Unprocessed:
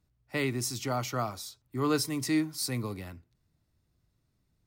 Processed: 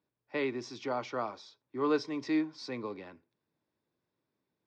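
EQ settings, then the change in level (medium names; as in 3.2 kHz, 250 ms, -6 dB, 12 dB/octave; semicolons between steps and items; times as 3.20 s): distance through air 100 m; cabinet simulation 410–4400 Hz, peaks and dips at 700 Hz -8 dB, 1.3 kHz -9 dB, 2 kHz -7 dB, 2.9 kHz -9 dB, 4.2 kHz -8 dB; +4.5 dB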